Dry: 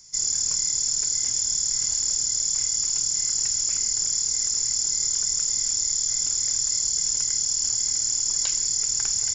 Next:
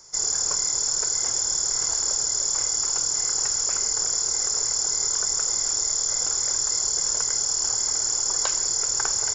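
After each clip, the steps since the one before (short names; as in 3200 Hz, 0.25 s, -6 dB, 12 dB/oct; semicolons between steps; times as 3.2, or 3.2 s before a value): band shelf 760 Hz +14.5 dB 2.4 oct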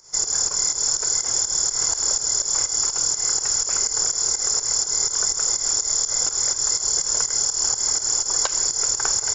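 pump 124 bpm, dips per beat 2, -12 dB, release 0.15 s; gain +3.5 dB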